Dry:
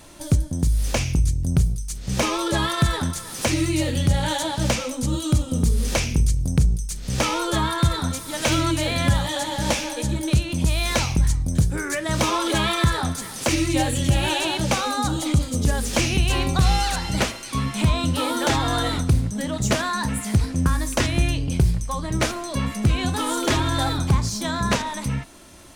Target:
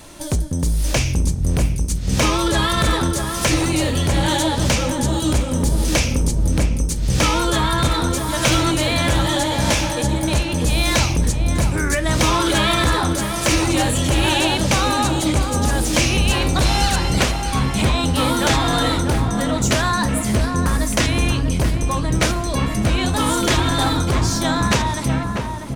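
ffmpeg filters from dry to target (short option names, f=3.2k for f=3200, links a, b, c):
-filter_complex "[0:a]acrossover=split=1600[a][b];[a]asoftclip=type=hard:threshold=-21dB[c];[c][b]amix=inputs=2:normalize=0,asplit=2[d][e];[e]adelay=643,lowpass=f=1.3k:p=1,volume=-4.5dB,asplit=2[f][g];[g]adelay=643,lowpass=f=1.3k:p=1,volume=0.5,asplit=2[h][i];[i]adelay=643,lowpass=f=1.3k:p=1,volume=0.5,asplit=2[j][k];[k]adelay=643,lowpass=f=1.3k:p=1,volume=0.5,asplit=2[l][m];[m]adelay=643,lowpass=f=1.3k:p=1,volume=0.5,asplit=2[n][o];[o]adelay=643,lowpass=f=1.3k:p=1,volume=0.5[p];[d][f][h][j][l][n][p]amix=inputs=7:normalize=0,volume=5dB"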